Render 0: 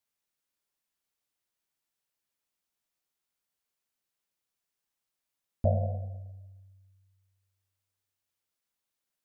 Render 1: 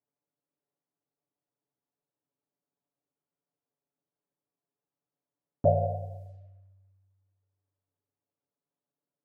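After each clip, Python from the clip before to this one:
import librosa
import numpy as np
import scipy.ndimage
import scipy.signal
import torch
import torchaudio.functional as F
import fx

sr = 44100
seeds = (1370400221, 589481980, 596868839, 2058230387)

y = scipy.signal.sosfilt(scipy.signal.butter(2, 130.0, 'highpass', fs=sr, output='sos'), x)
y = fx.env_lowpass(y, sr, base_hz=590.0, full_db=-42.0)
y = y + 0.78 * np.pad(y, (int(7.0 * sr / 1000.0), 0))[:len(y)]
y = F.gain(torch.from_numpy(y), 5.0).numpy()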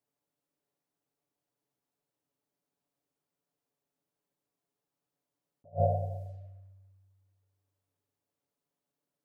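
y = fx.attack_slew(x, sr, db_per_s=370.0)
y = F.gain(torch.from_numpy(y), 3.5).numpy()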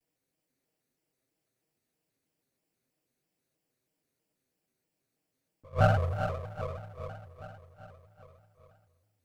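y = fx.lower_of_two(x, sr, delay_ms=0.44)
y = fx.echo_feedback(y, sr, ms=400, feedback_pct=58, wet_db=-8)
y = fx.vibrato_shape(y, sr, shape='square', rate_hz=3.1, depth_cents=160.0)
y = F.gain(torch.from_numpy(y), 5.5).numpy()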